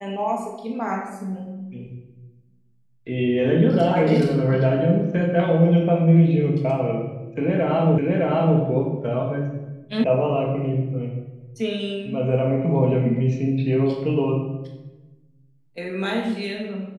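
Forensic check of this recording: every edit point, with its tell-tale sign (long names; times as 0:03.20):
0:07.98: the same again, the last 0.61 s
0:10.04: cut off before it has died away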